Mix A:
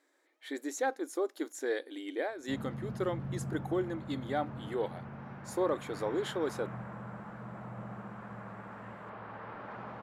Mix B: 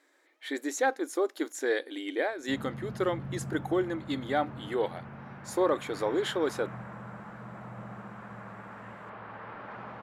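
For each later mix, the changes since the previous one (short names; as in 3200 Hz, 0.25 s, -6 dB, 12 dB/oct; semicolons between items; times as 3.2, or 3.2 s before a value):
speech +4.0 dB; master: add bell 2300 Hz +3.5 dB 2.1 oct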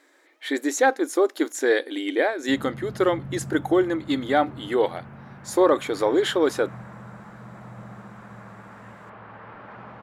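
speech +7.5 dB; master: add low shelf 180 Hz +4.5 dB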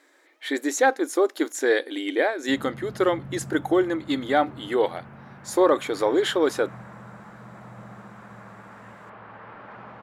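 master: add low shelf 180 Hz -4.5 dB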